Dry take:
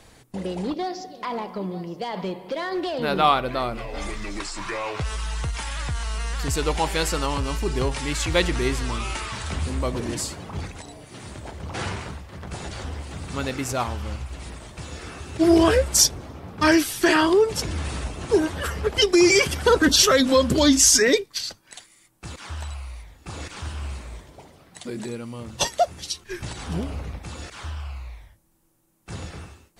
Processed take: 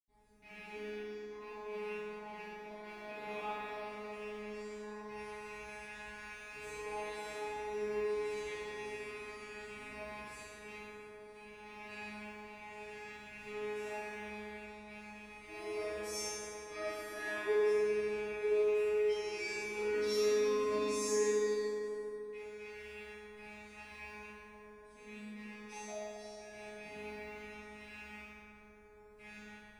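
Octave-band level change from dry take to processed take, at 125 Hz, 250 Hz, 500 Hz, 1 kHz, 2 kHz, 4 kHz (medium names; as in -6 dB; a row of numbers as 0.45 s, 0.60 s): under -25 dB, -24.0 dB, -11.0 dB, -18.0 dB, -15.5 dB, -23.5 dB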